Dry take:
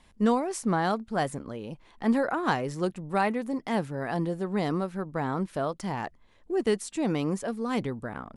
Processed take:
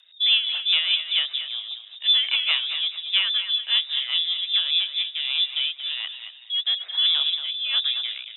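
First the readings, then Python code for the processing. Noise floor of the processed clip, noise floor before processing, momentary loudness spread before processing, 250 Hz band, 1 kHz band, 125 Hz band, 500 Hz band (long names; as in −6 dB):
−46 dBFS, −59 dBFS, 8 LU, below −40 dB, −16.0 dB, below −40 dB, below −25 dB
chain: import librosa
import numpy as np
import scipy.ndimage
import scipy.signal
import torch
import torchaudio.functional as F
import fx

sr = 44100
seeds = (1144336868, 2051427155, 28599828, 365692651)

y = np.r_[np.sort(x[:len(x) // 8 * 8].reshape(-1, 8), axis=1).ravel(), x[len(x) // 8 * 8:]]
y = fx.echo_feedback(y, sr, ms=219, feedback_pct=44, wet_db=-16.5)
y = fx.freq_invert(y, sr, carrier_hz=3700)
y = fx.rotary_switch(y, sr, hz=5.0, then_hz=1.2, switch_at_s=4.57)
y = fx.dynamic_eq(y, sr, hz=1200.0, q=1.5, threshold_db=-49.0, ratio=4.0, max_db=4)
y = scipy.signal.sosfilt(scipy.signal.butter(4, 550.0, 'highpass', fs=sr, output='sos'), y)
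y = fx.high_shelf(y, sr, hz=2100.0, db=9.0)
y = y + 10.0 ** (-10.5 / 20.0) * np.pad(y, (int(228 * sr / 1000.0), 0))[:len(y)]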